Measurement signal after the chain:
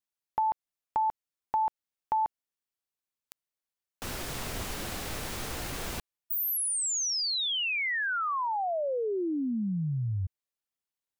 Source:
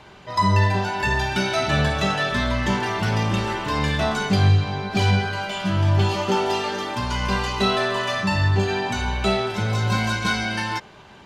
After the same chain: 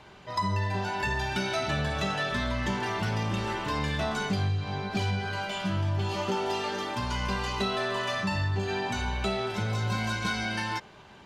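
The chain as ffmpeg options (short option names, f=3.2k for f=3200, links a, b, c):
-af "acompressor=threshold=-20dB:ratio=6,volume=-5dB"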